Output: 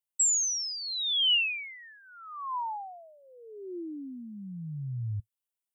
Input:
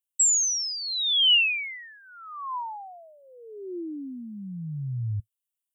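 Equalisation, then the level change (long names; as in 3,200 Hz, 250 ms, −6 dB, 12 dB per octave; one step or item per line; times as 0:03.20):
dynamic equaliser 1,900 Hz, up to −4 dB, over −40 dBFS, Q 1.5
parametric band 860 Hz +5.5 dB 0.55 octaves
−4.0 dB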